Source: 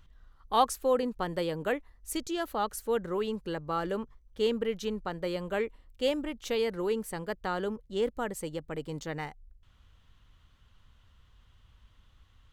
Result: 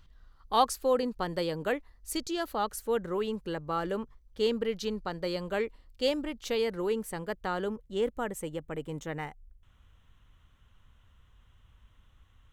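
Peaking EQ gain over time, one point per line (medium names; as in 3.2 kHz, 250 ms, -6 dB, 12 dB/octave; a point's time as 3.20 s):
peaking EQ 4.6 kHz 0.37 oct
2.40 s +6 dB
2.86 s -1 dB
3.93 s -1 dB
4.74 s +8 dB
6.07 s +8 dB
6.89 s -2 dB
7.60 s -2 dB
8.57 s -14 dB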